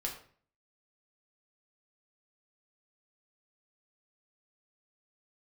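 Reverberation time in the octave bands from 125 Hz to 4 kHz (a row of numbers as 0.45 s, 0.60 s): 0.65 s, 0.55 s, 0.50 s, 0.45 s, 0.45 s, 0.35 s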